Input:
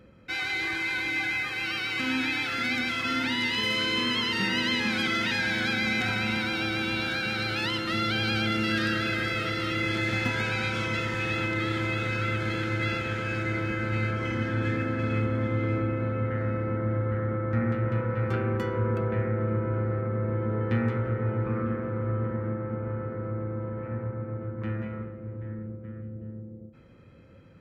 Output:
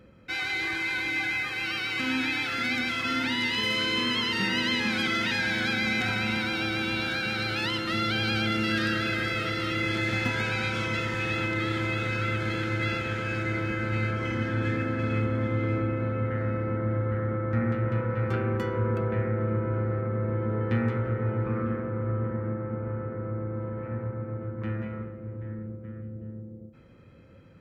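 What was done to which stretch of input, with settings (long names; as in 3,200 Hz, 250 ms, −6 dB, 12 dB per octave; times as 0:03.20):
0:21.82–0:23.54: high-frequency loss of the air 160 metres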